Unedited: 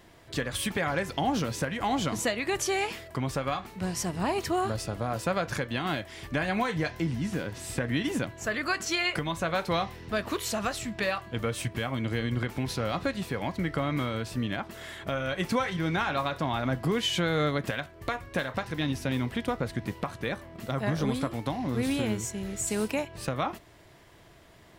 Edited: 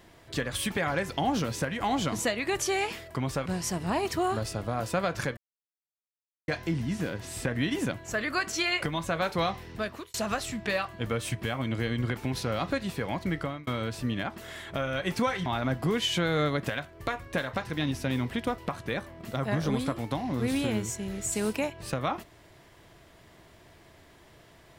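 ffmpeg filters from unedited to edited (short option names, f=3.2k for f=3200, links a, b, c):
-filter_complex "[0:a]asplit=8[a][b][c][d][e][f][g][h];[a]atrim=end=3.462[i];[b]atrim=start=3.788:end=5.7,asetpts=PTS-STARTPTS,afade=t=out:st=1.908:d=0.004:c=hsin[j];[c]atrim=start=5.7:end=6.81,asetpts=PTS-STARTPTS,volume=0[k];[d]atrim=start=6.81:end=10.47,asetpts=PTS-STARTPTS,afade=t=in:d=0.004:c=hsin,afade=t=out:st=3.23:d=0.43[l];[e]atrim=start=10.47:end=14,asetpts=PTS-STARTPTS,afade=t=in:d=0.004:c=hsin,afade=t=out:st=3.22:d=0.31[m];[f]atrim=start=14:end=15.792,asetpts=PTS-STARTPTS,afade=t=in:d=0.004:c=hsin[n];[g]atrim=start=16.468:end=19.592[o];[h]atrim=start=19.928[p];[j][k][l][m][n]concat=n=5:v=0:a=1[q];[i][q]acrossfade=d=0.004:c1=hsin:c2=hsin[r];[r][o]acrossfade=d=0.004:c1=hsin:c2=hsin[s];[s][p]acrossfade=d=0.004:c1=hsin:c2=hsin"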